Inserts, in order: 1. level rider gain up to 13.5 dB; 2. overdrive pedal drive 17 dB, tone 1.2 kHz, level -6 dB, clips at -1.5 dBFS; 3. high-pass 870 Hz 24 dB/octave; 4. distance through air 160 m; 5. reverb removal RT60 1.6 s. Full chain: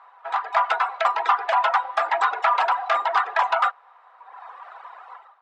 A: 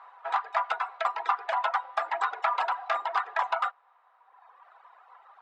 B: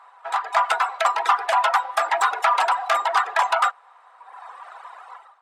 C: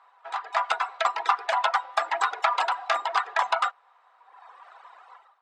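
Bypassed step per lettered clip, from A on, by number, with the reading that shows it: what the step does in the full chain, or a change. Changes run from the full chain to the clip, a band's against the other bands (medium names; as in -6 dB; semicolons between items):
1, momentary loudness spread change -5 LU; 4, 4 kHz band +3.0 dB; 2, crest factor change +4.5 dB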